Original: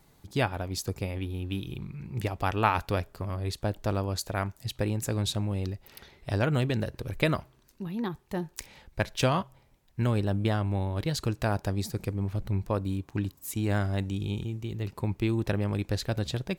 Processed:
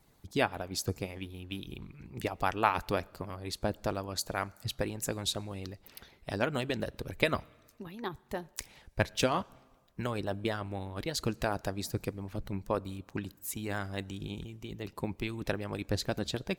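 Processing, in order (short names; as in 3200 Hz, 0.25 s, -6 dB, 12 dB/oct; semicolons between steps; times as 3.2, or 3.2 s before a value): harmonic-percussive split harmonic -13 dB; on a send: reverb RT60 1.5 s, pre-delay 5 ms, DRR 23.5 dB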